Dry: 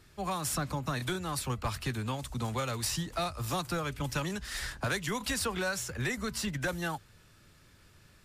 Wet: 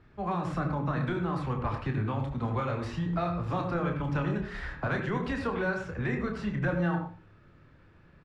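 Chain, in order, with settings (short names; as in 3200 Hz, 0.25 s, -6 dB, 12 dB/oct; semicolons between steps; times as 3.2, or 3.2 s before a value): LPF 1700 Hz 12 dB/oct; doubler 29 ms -6.5 dB; on a send: reverb RT60 0.40 s, pre-delay 68 ms, DRR 6 dB; on the sum: gain +1.5 dB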